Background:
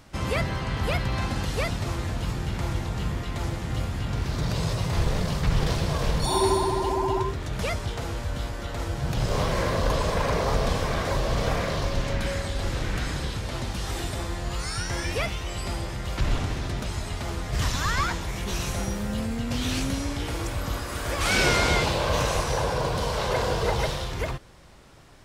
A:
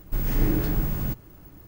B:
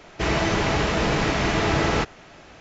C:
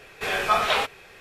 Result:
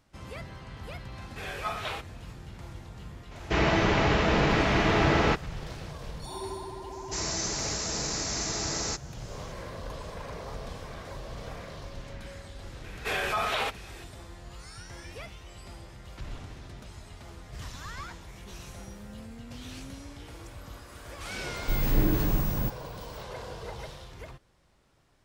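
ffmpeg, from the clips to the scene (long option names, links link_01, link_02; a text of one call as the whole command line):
ffmpeg -i bed.wav -i cue0.wav -i cue1.wav -i cue2.wav -filter_complex "[3:a]asplit=2[link_01][link_02];[2:a]asplit=2[link_03][link_04];[0:a]volume=-15dB[link_05];[link_03]acrossover=split=4600[link_06][link_07];[link_07]acompressor=threshold=-48dB:ratio=4:attack=1:release=60[link_08];[link_06][link_08]amix=inputs=2:normalize=0[link_09];[link_04]aexciter=amount=14.4:drive=3.1:freq=4600[link_10];[link_02]alimiter=limit=-18dB:level=0:latency=1:release=64[link_11];[link_01]atrim=end=1.2,asetpts=PTS-STARTPTS,volume=-12.5dB,afade=type=in:duration=0.004:curve=hsin,afade=type=out:start_time=1.196:duration=0.004:curve=hsin,adelay=1150[link_12];[link_09]atrim=end=2.6,asetpts=PTS-STARTPTS,volume=-1.5dB,afade=type=in:duration=0.004:curve=hsin,afade=type=out:start_time=2.596:duration=0.004:curve=hsin,adelay=3310[link_13];[link_10]atrim=end=2.6,asetpts=PTS-STARTPTS,volume=-14dB,afade=type=in:duration=0.004:curve=hsin,afade=type=out:start_time=2.596:duration=0.004:curve=hsin,adelay=6920[link_14];[link_11]atrim=end=1.2,asetpts=PTS-STARTPTS,volume=-2dB,afade=type=in:duration=0.004:curve=hsin,afade=type=out:start_time=1.196:duration=0.004:curve=hsin,adelay=566244S[link_15];[1:a]atrim=end=1.67,asetpts=PTS-STARTPTS,volume=-1.5dB,afade=type=in:duration=0.004:curve=hsin,afade=type=out:start_time=1.666:duration=0.004:curve=hsin,adelay=21560[link_16];[link_05][link_12][link_13][link_14][link_15][link_16]amix=inputs=6:normalize=0" out.wav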